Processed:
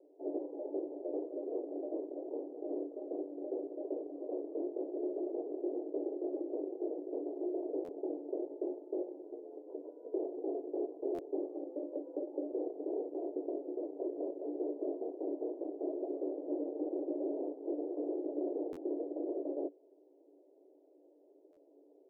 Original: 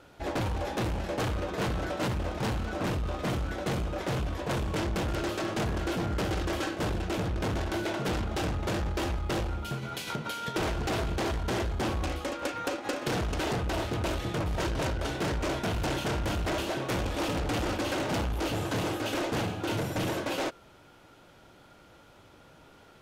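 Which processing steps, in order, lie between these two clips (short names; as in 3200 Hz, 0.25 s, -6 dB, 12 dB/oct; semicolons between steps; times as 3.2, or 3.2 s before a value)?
rippled Chebyshev high-pass 270 Hz, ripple 6 dB; speed mistake 24 fps film run at 25 fps; steep low-pass 620 Hz 48 dB/oct; stuck buffer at 7.84/11.14/18.72/21.52, samples 512, times 3; gain +1 dB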